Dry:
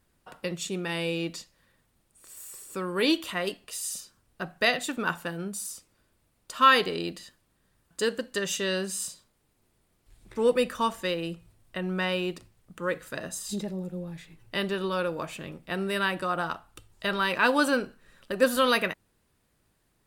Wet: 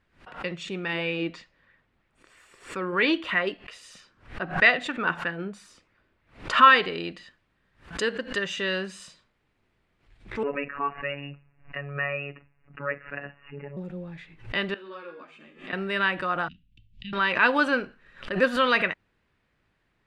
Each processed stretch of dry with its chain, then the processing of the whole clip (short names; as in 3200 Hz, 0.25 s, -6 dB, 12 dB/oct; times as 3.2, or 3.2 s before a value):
0.93–6.7 bell 12000 Hz -5 dB 2 oct + LFO bell 3.1 Hz 280–2100 Hz +6 dB
10.43–13.77 brick-wall FIR low-pass 2900 Hz + robotiser 142 Hz
14.74–15.73 resonant low shelf 170 Hz -11.5 dB, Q 3 + resonator 53 Hz, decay 0.72 s, harmonics odd, mix 80% + ensemble effect
16.48–17.13 elliptic band-stop 220–2900 Hz, stop band 50 dB + tape spacing loss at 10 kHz 29 dB
whole clip: Bessel low-pass 3100 Hz, order 2; bell 2100 Hz +8 dB 1.5 oct; backwards sustainer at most 150 dB/s; gain -1.5 dB